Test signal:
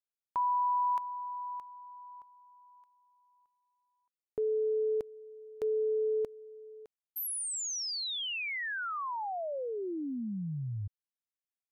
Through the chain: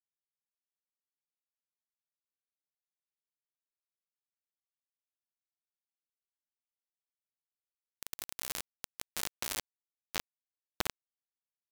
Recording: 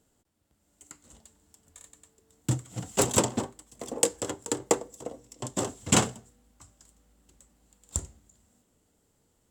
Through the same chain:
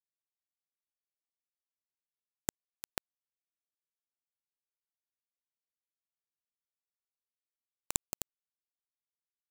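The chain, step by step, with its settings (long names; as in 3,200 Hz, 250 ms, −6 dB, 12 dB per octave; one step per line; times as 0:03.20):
echo that builds up and dies away 86 ms, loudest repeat 8, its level −9 dB
gate with flip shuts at −21 dBFS, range −25 dB
bit reduction 4 bits
level +3 dB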